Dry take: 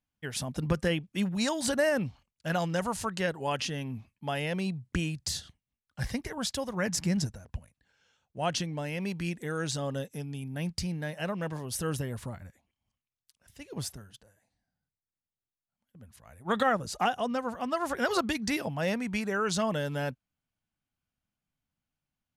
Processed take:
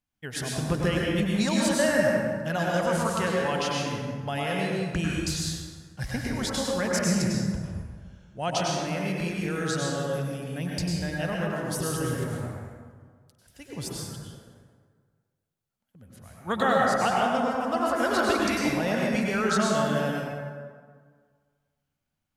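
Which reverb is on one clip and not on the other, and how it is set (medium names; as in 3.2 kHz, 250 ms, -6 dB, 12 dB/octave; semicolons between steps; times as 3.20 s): plate-style reverb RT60 1.7 s, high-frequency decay 0.55×, pre-delay 85 ms, DRR -3.5 dB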